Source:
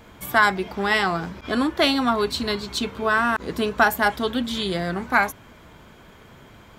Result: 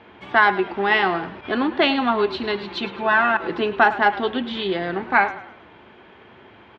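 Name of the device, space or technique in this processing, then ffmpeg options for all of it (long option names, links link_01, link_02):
frequency-shifting delay pedal into a guitar cabinet: -filter_complex "[0:a]asettb=1/sr,asplit=3[link_01][link_02][link_03];[link_01]atrim=end=2.634[link_04];[link_02]atrim=start=2.63:end=3.6,asetpts=PTS-STARTPTS,afade=type=in:duration=0.004:curve=qsin,afade=type=out:start_time=0.966:duration=0.004:curve=qsin,aecho=1:1:5.8:0.7,atrim=end_sample=42777[link_05];[link_03]atrim=start=3.596[link_06];[link_04][link_05]acrossfade=duration=0.004:curve1=hsin:curve2=qsin[link_07];[link_07][link_06]acrossfade=duration=0.004:curve1=qsin:curve2=hsin,asplit=5[link_08][link_09][link_10][link_11][link_12];[link_09]adelay=105,afreqshift=-31,volume=-15dB[link_13];[link_10]adelay=210,afreqshift=-62,volume=-22.7dB[link_14];[link_11]adelay=315,afreqshift=-93,volume=-30.5dB[link_15];[link_12]adelay=420,afreqshift=-124,volume=-38.2dB[link_16];[link_08][link_13][link_14][link_15][link_16]amix=inputs=5:normalize=0,highpass=110,equalizer=frequency=150:width_type=q:width=4:gain=-9,equalizer=frequency=370:width_type=q:width=4:gain=7,equalizer=frequency=830:width_type=q:width=4:gain=6,equalizer=frequency=1800:width_type=q:width=4:gain=4,equalizer=frequency=2700:width_type=q:width=4:gain=5,lowpass=frequency=3700:width=0.5412,lowpass=frequency=3700:width=1.3066,volume=-1dB"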